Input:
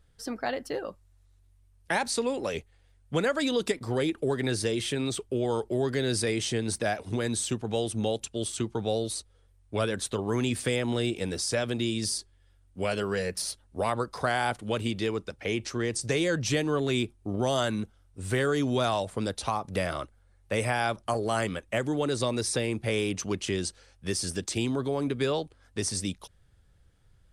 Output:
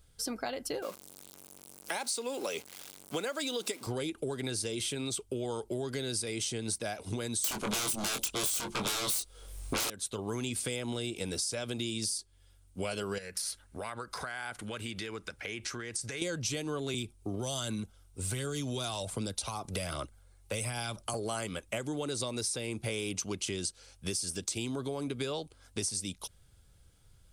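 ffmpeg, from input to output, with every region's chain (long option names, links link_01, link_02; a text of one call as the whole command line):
ffmpeg -i in.wav -filter_complex "[0:a]asettb=1/sr,asplit=3[link_01][link_02][link_03];[link_01]atrim=end=0.824[link_04];[link_02]atrim=start=0.82:end=3.87,asetpts=PTS-STARTPTS,afade=type=in:duration=0.004:curve=qsin,afade=type=out:start_time=3.046:duration=0.004:curve=qsin,aeval=exprs='val(0)+0.5*0.00794*sgn(val(0))':channel_layout=same,highpass=280[link_05];[link_03]atrim=start=3.866[link_06];[link_04][link_05]acrossfade=duration=0.004:curve1=hsin:curve2=qsin[link_07];[link_07][link_06]acrossfade=duration=0.004:curve1=qsin:curve2=hsin,asettb=1/sr,asplit=3[link_08][link_09][link_10];[link_08]atrim=end=7.444[link_11];[link_09]atrim=start=7.44:end=9.9,asetpts=PTS-STARTPTS,afade=type=in:duration=0.004:curve=qsin,afade=type=out:start_time=2.456:duration=0.004:curve=qsin,equalizer=frequency=95:width=0.94:gain=-12,aeval=exprs='0.141*sin(PI/2*7.94*val(0)/0.141)':channel_layout=same,asplit=2[link_12][link_13];[link_13]adelay=23,volume=-5.5dB[link_14];[link_12][link_14]amix=inputs=2:normalize=0,atrim=end_sample=108486[link_15];[link_10]atrim=start=9.896[link_16];[link_11][link_15]acrossfade=duration=0.004:curve1=hsin:curve2=qsin[link_17];[link_17][link_16]acrossfade=duration=0.004:curve1=qsin:curve2=hsin,asettb=1/sr,asplit=3[link_18][link_19][link_20];[link_18]atrim=end=13.184[link_21];[link_19]atrim=start=13.18:end=16.22,asetpts=PTS-STARTPTS,afade=type=in:duration=0.004:curve=qsin,afade=type=out:start_time=3.036:duration=0.004:curve=qsin,equalizer=frequency=1700:width=1.6:gain=12.5,acompressor=threshold=-38dB:ratio=4:attack=3.2:release=140:knee=1:detection=peak[link_22];[link_20]atrim=start=16.216[link_23];[link_21][link_22]acrossfade=duration=0.004:curve1=hsin:curve2=qsin[link_24];[link_24][link_23]acrossfade=duration=0.004:curve1=qsin:curve2=hsin,asettb=1/sr,asplit=3[link_25][link_26][link_27];[link_25]atrim=end=16.944[link_28];[link_26]atrim=start=16.94:end=21.14,asetpts=PTS-STARTPTS,afade=type=in:duration=0.004:curve=qsin,afade=type=out:start_time=4.196:duration=0.004:curve=qsin,acrossover=split=210|3000[link_29][link_30][link_31];[link_30]acompressor=threshold=-31dB:ratio=6:attack=3.2:release=140:knee=2.83:detection=peak[link_32];[link_29][link_32][link_31]amix=inputs=3:normalize=0,aphaser=in_gain=1:out_gain=1:delay=3:decay=0.3:speed=1.3:type=triangular[link_33];[link_27]atrim=start=21.136[link_34];[link_28][link_33]acrossfade=duration=0.004:curve1=hsin:curve2=qsin[link_35];[link_35][link_34]acrossfade=duration=0.004:curve1=qsin:curve2=hsin,highshelf=frequency=4200:gain=11.5,acompressor=threshold=-32dB:ratio=6,bandreject=frequency=1800:width=7.3" out.wav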